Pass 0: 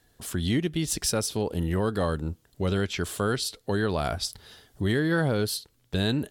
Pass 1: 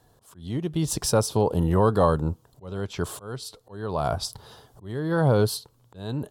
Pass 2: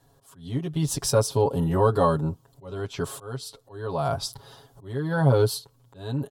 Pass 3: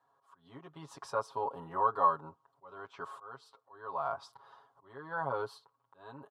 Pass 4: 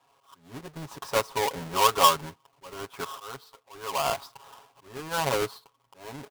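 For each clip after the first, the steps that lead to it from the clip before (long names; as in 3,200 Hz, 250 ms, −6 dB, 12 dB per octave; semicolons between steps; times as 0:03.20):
volume swells 592 ms; graphic EQ with 10 bands 125 Hz +9 dB, 500 Hz +5 dB, 1,000 Hz +12 dB, 2,000 Hz −8 dB
comb filter 7.3 ms, depth 99%; level −3.5 dB
resonant band-pass 1,100 Hz, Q 3.1
each half-wave held at its own peak; level +4.5 dB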